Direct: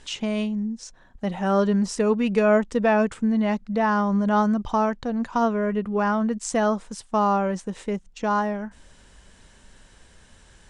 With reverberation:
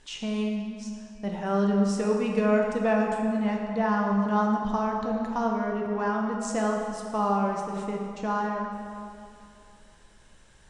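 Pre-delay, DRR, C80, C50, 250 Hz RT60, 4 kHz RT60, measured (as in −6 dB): 6 ms, 0.0 dB, 3.5 dB, 2.0 dB, 2.6 s, 1.8 s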